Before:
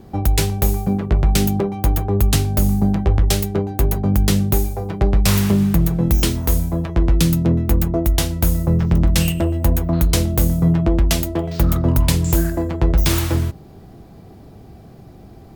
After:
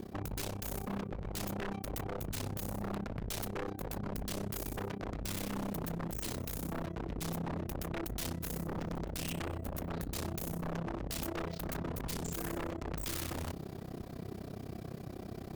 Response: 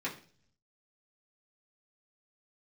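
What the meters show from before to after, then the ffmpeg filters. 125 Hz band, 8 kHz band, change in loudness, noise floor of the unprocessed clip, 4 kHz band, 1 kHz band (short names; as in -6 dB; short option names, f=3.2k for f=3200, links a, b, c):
-23.5 dB, -17.5 dB, -21.5 dB, -42 dBFS, -18.5 dB, -14.0 dB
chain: -af "equalizer=f=830:w=7.7:g=-10,tremolo=f=32:d=0.947,areverse,acompressor=threshold=-27dB:ratio=10,areverse,aeval=exprs='clip(val(0),-1,0.0112)':c=same,lowshelf=f=80:g=-11,aeval=exprs='0.0158*(abs(mod(val(0)/0.0158+3,4)-2)-1)':c=same,volume=4.5dB"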